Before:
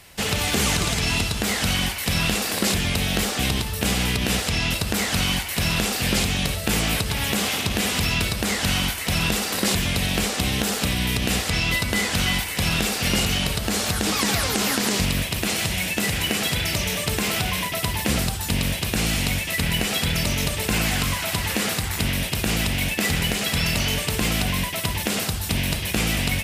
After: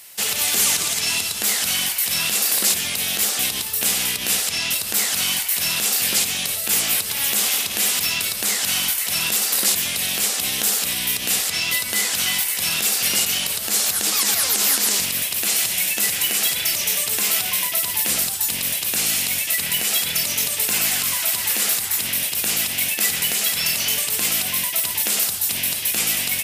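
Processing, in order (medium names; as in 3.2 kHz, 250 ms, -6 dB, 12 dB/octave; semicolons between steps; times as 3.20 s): high-pass 56 Hz; RIAA curve recording; loudness maximiser +1.5 dB; trim -5 dB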